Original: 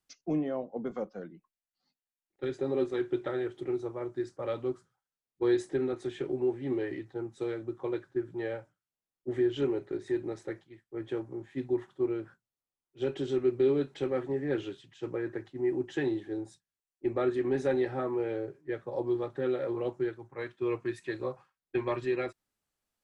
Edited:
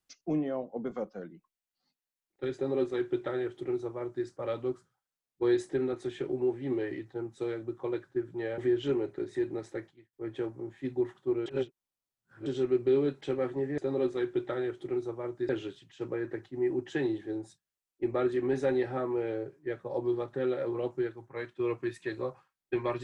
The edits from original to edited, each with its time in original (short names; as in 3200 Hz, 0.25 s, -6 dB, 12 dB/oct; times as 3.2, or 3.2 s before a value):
2.55–4.26 copy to 14.51
8.58–9.31 cut
10.6–10.86 fade out
12.19–13.19 reverse